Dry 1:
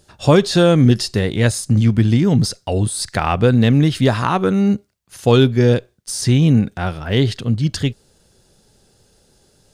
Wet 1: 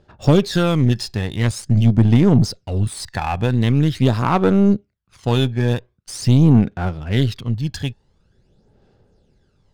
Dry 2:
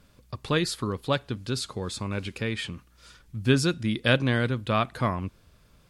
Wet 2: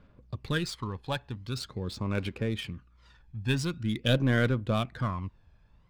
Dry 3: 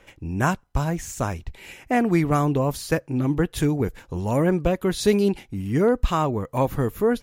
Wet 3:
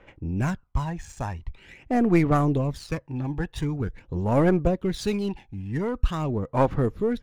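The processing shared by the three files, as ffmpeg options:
ffmpeg -i in.wav -af "aphaser=in_gain=1:out_gain=1:delay=1.2:decay=0.56:speed=0.45:type=sinusoidal,adynamicsmooth=sensitivity=7:basefreq=2900,aeval=exprs='1.58*(cos(1*acos(clip(val(0)/1.58,-1,1)))-cos(1*PI/2))+0.112*(cos(6*acos(clip(val(0)/1.58,-1,1)))-cos(6*PI/2))':channel_layout=same,volume=-6dB" out.wav

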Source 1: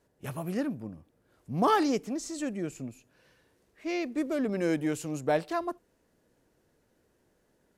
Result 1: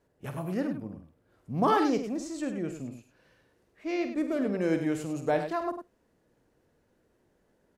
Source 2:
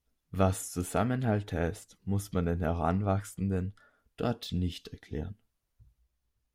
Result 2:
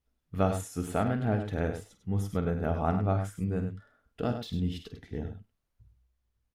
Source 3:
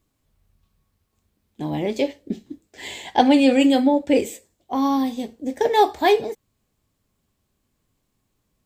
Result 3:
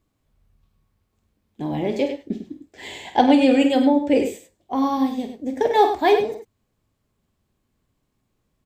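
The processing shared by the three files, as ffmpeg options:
ffmpeg -i in.wav -af "highshelf=frequency=3700:gain=-7,aecho=1:1:49|100:0.316|0.355" out.wav

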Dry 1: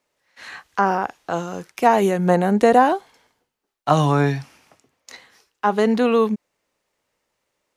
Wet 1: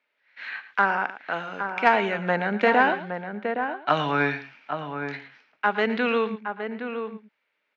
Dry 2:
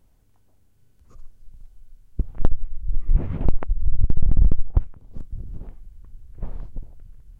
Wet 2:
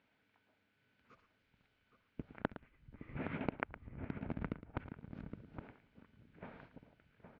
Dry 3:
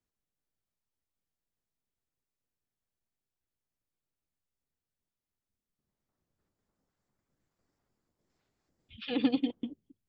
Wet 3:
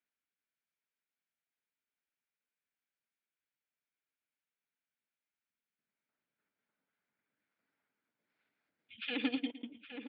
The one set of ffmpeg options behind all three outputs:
ffmpeg -i in.wav -filter_complex "[0:a]highpass=330,equalizer=frequency=360:width_type=q:width=4:gain=-9,equalizer=frequency=520:width_type=q:width=4:gain=-6,equalizer=frequency=750:width_type=q:width=4:gain=-6,equalizer=frequency=1100:width_type=q:width=4:gain=-6,equalizer=frequency=1500:width_type=q:width=4:gain=6,equalizer=frequency=2300:width_type=q:width=4:gain=7,lowpass=frequency=3700:width=0.5412,lowpass=frequency=3700:width=1.3066,asplit=2[link_01][link_02];[link_02]aecho=0:1:112:0.211[link_03];[link_01][link_03]amix=inputs=2:normalize=0,aeval=exprs='0.596*(cos(1*acos(clip(val(0)/0.596,-1,1)))-cos(1*PI/2))+0.0596*(cos(3*acos(clip(val(0)/0.596,-1,1)))-cos(3*PI/2))+0.0106*(cos(5*acos(clip(val(0)/0.596,-1,1)))-cos(5*PI/2))+0.00531*(cos(7*acos(clip(val(0)/0.596,-1,1)))-cos(7*PI/2))':channel_layout=same,asplit=2[link_04][link_05];[link_05]adelay=816.3,volume=-7dB,highshelf=frequency=4000:gain=-18.4[link_06];[link_04][link_06]amix=inputs=2:normalize=0,volume=2dB" out.wav

